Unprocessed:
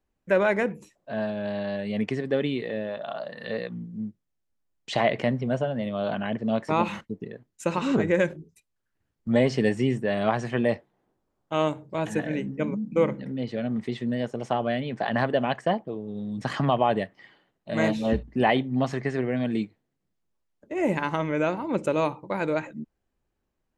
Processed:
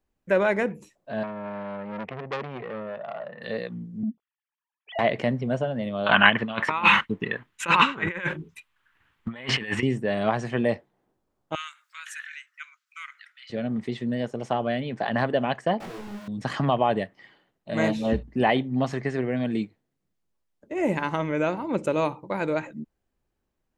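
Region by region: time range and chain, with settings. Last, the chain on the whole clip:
1.23–3.42 s: cabinet simulation 110–2400 Hz, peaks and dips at 120 Hz +5 dB, 290 Hz -10 dB, 1.6 kHz -3 dB + transformer saturation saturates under 1.9 kHz
4.03–4.99 s: formants replaced by sine waves + transient shaper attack -5 dB, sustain +11 dB
6.06–9.83 s: compressor with a negative ratio -29 dBFS, ratio -0.5 + high-order bell 1.8 kHz +16 dB 2.3 oct
11.55–13.50 s: upward compressor, threshold -25 dBFS + Chebyshev high-pass 1.3 kHz, order 5
15.80–16.28 s: one-bit comparator + treble shelf 5.5 kHz -8.5 dB + detune thickener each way 50 cents
whole clip: none

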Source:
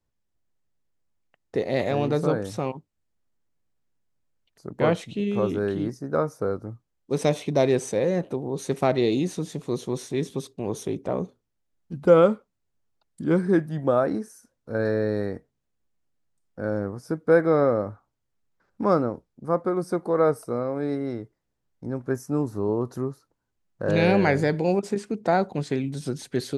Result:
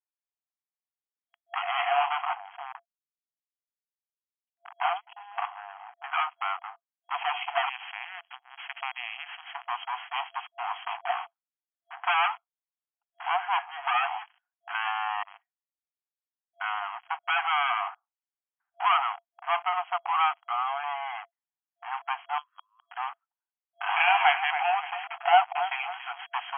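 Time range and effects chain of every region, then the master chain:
2.25–6.04 s: tilt EQ -2 dB/octave + level held to a coarse grid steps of 19 dB + flange 1.7 Hz, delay 2.2 ms, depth 3.9 ms, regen +86%
7.69–9.54 s: pre-emphasis filter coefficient 0.97 + spectrum-flattening compressor 2:1
15.23–16.61 s: valve stage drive 46 dB, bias 0.65 + de-hum 64.91 Hz, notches 7 + phase dispersion highs, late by 53 ms, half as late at 670 Hz
19.94–20.84 s: high-pass 820 Hz + tilt EQ -2 dB/octave
22.38–22.91 s: brick-wall FIR high-pass 980 Hz + slow attack 250 ms
24.00–26.25 s: frequency weighting A + feedback delay 278 ms, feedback 41%, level -17 dB
whole clip: waveshaping leveller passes 5; FFT band-pass 680–3300 Hz; dynamic bell 1.7 kHz, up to -8 dB, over -37 dBFS, Q 2.7; trim -4.5 dB

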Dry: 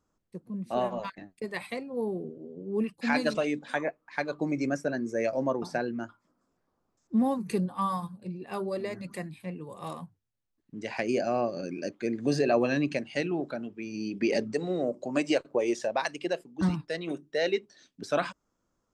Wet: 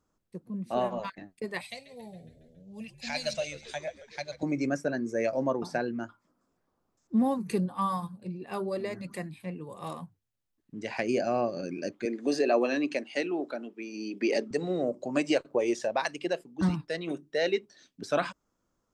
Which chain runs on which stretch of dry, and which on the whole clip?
1.61–4.43 s: FFT filter 120 Hz 0 dB, 220 Hz -12 dB, 370 Hz -29 dB, 610 Hz -2 dB, 1.2 kHz -18 dB, 2.5 kHz -1 dB, 6.5 kHz +8 dB, 9.6 kHz -1 dB + frequency-shifting echo 138 ms, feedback 57%, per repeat -79 Hz, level -15.5 dB
12.05–14.51 s: high-pass 250 Hz 24 dB/octave + band-stop 1.6 kHz, Q 28
whole clip: none

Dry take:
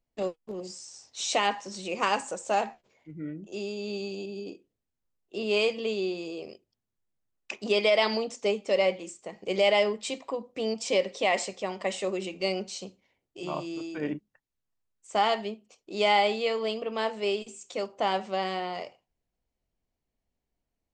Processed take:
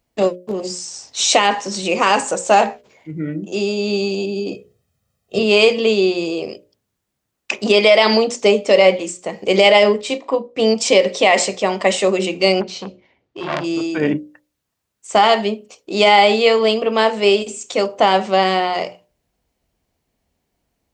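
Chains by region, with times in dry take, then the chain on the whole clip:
4.51–5.39 s: high-pass 83 Hz + bass shelf 260 Hz +11 dB + comb 1.6 ms, depth 90%
10.01–10.59 s: treble shelf 7 kHz -11 dB + doubling 36 ms -12 dB + upward expansion, over -44 dBFS
12.61–13.64 s: distance through air 180 m + transformer saturation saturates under 2.3 kHz
whole clip: high-pass 48 Hz; hum notches 60/120/180/240/300/360/420/480/540/600 Hz; loudness maximiser +16 dB; trim -1 dB

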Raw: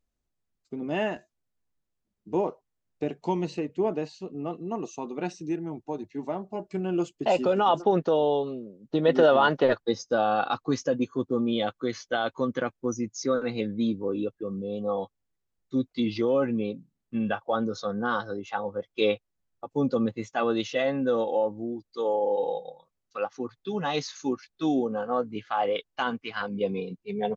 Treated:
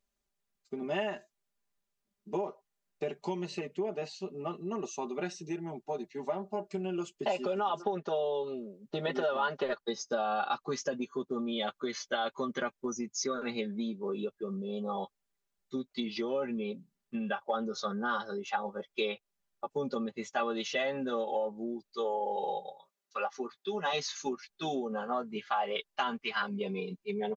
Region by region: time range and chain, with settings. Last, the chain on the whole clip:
22.67–23.93 s: high-pass 240 Hz + doubling 18 ms -14 dB
whole clip: comb 5 ms, depth 89%; compression 6:1, threshold -26 dBFS; bass shelf 330 Hz -10 dB

